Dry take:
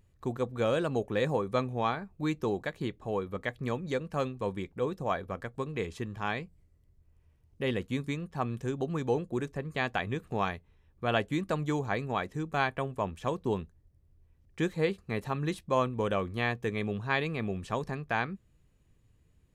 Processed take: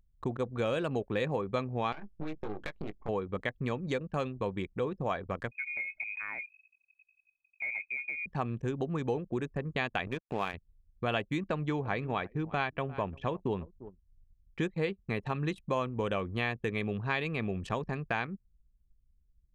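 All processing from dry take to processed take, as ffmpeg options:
-filter_complex "[0:a]asettb=1/sr,asplit=3[a][b][c];[a]atrim=end=1.924[d];[b]atrim=start=1.92:end=3.09,asetpts=PTS-STARTPTS,afade=t=in:d=0.004:c=qsin,afade=t=out:st=1.166:d=0.004:c=qsin,aeval=exprs='max(val(0),0)':c=same,acompressor=threshold=-35dB:ratio=20:attack=3.2:release=140:knee=1:detection=peak,asplit=2[e][f];[f]adelay=19,volume=-5dB[g];[e][g]amix=inputs=2:normalize=0,atrim=end_sample=51597[h];[c]atrim=start=3.086[i];[d][h]acrossfade=d=0.004:c1=hsin:c2=qsin[j];[j][i]acrossfade=d=0.004:c1=qsin:c2=hsin,asettb=1/sr,asplit=3[k][l][m];[k]atrim=end=5.514[n];[l]atrim=start=5.51:end=8.26,asetpts=PTS-STARTPTS,afade=t=in:d=0.004:c=qsin,afade=t=out:st=2.746:d=0.004:c=qsin,equalizer=f=420:w=5.5:g=11,acompressor=threshold=-47dB:ratio=2.5:attack=3.2:release=140:knee=1:detection=peak,lowpass=f=2.2k:t=q:w=0.5098,lowpass=f=2.2k:t=q:w=0.6013,lowpass=f=2.2k:t=q:w=0.9,lowpass=f=2.2k:t=q:w=2.563,afreqshift=-2600[o];[m]atrim=start=8.256[p];[n][o]acrossfade=d=0.004:c1=hsin:c2=qsin[q];[q][p]acrossfade=d=0.004:c1=qsin:c2=hsin,asettb=1/sr,asplit=3[r][s][t];[r]atrim=end=10.074[u];[s]atrim=start=10.07:end=10.54,asetpts=PTS-STARTPTS,afade=t=in:d=0.004:c=qsin,afade=t=out:st=0.466:d=0.004:c=qsin,highpass=f=170:p=1,acompressor=mode=upward:threshold=-33dB:ratio=2.5:attack=3.2:release=140:knee=2.83:detection=peak,aeval=exprs='sgn(val(0))*max(abs(val(0))-0.00596,0)':c=same[v];[t]atrim=start=10.536[w];[u][v]acrossfade=d=0.004:c1=hsin:c2=qsin[x];[x][w]acrossfade=d=0.004:c1=qsin:c2=hsin,asettb=1/sr,asplit=3[y][z][aa];[y]atrim=end=11.474[ab];[z]atrim=start=11.47:end=14.61,asetpts=PTS-STARTPTS,afade=t=in:d=0.004:c=qsin,afade=t=out:st=3.136:d=0.004:c=qsin,lowpass=4.7k,aecho=1:1:346:0.0944,atrim=end_sample=138474[ac];[aa]atrim=start=14.606[ad];[ab][ac]acrossfade=d=0.004:c1=hsin:c2=qsin[ae];[ae][ad]acrossfade=d=0.004:c1=qsin:c2=hsin,adynamicequalizer=threshold=0.00355:dfrequency=2600:dqfactor=2.5:tfrequency=2600:tqfactor=2.5:attack=5:release=100:ratio=0.375:range=2.5:mode=boostabove:tftype=bell,acompressor=threshold=-36dB:ratio=2.5,anlmdn=0.0251,volume=4.5dB"

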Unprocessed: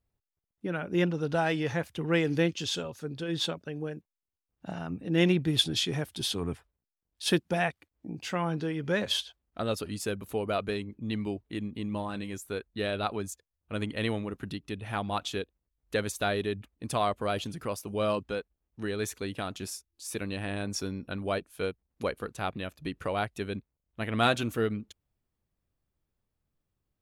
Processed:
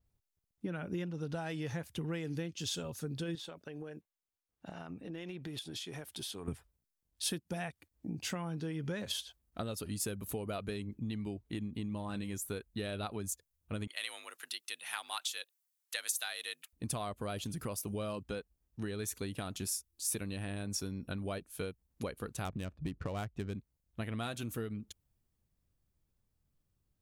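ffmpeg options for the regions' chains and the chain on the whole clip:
-filter_complex "[0:a]asettb=1/sr,asplit=3[a][b][c];[a]atrim=end=3.354[d];[b]atrim=start=3.35:end=6.48,asetpts=PTS-STARTPTS,afade=t=in:d=0.004:c=qsin,afade=t=out:st=3.126:d=0.004:c=qsin,bass=f=250:g=-12,treble=f=4k:g=-5,acompressor=threshold=-39dB:ratio=10:attack=3.2:release=140:knee=1:detection=peak[e];[c]atrim=start=6.476[f];[d][e]acrossfade=d=0.004:c1=hsin:c2=qsin[g];[g][f]acrossfade=d=0.004:c1=qsin:c2=hsin,asettb=1/sr,asplit=3[h][i][j];[h]atrim=end=13.874[k];[i]atrim=start=13.87:end=16.73,asetpts=PTS-STARTPTS,afade=t=in:d=0.004:c=qsin,afade=t=out:st=2.856:d=0.004:c=qsin,highpass=890,tiltshelf=f=1.2k:g=-6,afreqshift=53[l];[j]atrim=start=16.726[m];[k][l]acrossfade=d=0.004:c1=hsin:c2=qsin[n];[n][m]acrossfade=d=0.004:c1=qsin:c2=hsin,asettb=1/sr,asplit=3[o][p][q];[o]atrim=end=22.454[r];[p]atrim=start=22.45:end=23.55,asetpts=PTS-STARTPTS,afade=t=in:d=0.004:c=qsin,afade=t=out:st=1.096:d=0.004:c=qsin,lowshelf=f=190:g=6.5,adynamicsmooth=sensitivity=8:basefreq=1.3k[s];[q]atrim=start=23.546[t];[r][s]acrossfade=d=0.004:c1=hsin:c2=qsin[u];[u][t]acrossfade=d=0.004:c1=qsin:c2=hsin,bass=f=250:g=6,treble=f=4k:g=5,acompressor=threshold=-32dB:ratio=12,adynamicequalizer=threshold=0.00224:dfrequency=7500:dqfactor=0.7:tfrequency=7500:tqfactor=0.7:attack=5:release=100:ratio=0.375:range=3.5:mode=boostabove:tftype=highshelf,volume=-2.5dB"

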